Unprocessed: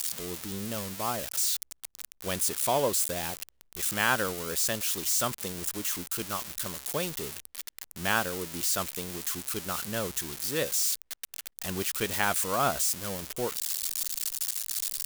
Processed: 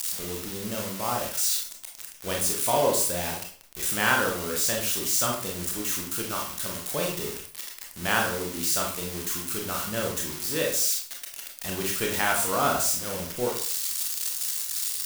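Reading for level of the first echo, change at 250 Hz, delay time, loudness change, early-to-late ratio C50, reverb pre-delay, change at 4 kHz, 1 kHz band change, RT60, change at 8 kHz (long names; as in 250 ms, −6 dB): no echo audible, +3.0 dB, no echo audible, +3.0 dB, 5.0 dB, 24 ms, +3.0 dB, +3.5 dB, 0.45 s, +3.0 dB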